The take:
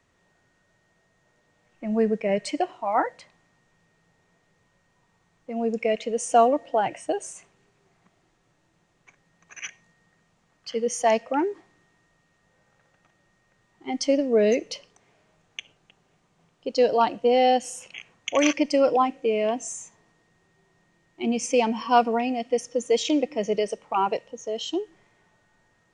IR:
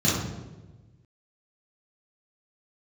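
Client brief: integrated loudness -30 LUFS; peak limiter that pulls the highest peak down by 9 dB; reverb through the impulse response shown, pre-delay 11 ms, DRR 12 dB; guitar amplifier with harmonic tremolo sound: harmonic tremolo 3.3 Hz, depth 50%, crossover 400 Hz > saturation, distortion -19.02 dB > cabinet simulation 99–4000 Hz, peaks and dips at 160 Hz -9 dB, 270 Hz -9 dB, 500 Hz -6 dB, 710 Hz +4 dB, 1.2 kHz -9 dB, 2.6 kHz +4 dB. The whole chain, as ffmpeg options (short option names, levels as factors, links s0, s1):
-filter_complex "[0:a]alimiter=limit=0.168:level=0:latency=1,asplit=2[s0][s1];[1:a]atrim=start_sample=2205,adelay=11[s2];[s1][s2]afir=irnorm=-1:irlink=0,volume=0.0473[s3];[s0][s3]amix=inputs=2:normalize=0,acrossover=split=400[s4][s5];[s4]aeval=exprs='val(0)*(1-0.5/2+0.5/2*cos(2*PI*3.3*n/s))':c=same[s6];[s5]aeval=exprs='val(0)*(1-0.5/2-0.5/2*cos(2*PI*3.3*n/s))':c=same[s7];[s6][s7]amix=inputs=2:normalize=0,asoftclip=threshold=0.119,highpass=99,equalizer=f=160:t=q:w=4:g=-9,equalizer=f=270:t=q:w=4:g=-9,equalizer=f=500:t=q:w=4:g=-6,equalizer=f=710:t=q:w=4:g=4,equalizer=f=1200:t=q:w=4:g=-9,equalizer=f=2600:t=q:w=4:g=4,lowpass=f=4000:w=0.5412,lowpass=f=4000:w=1.3066,volume=1.26"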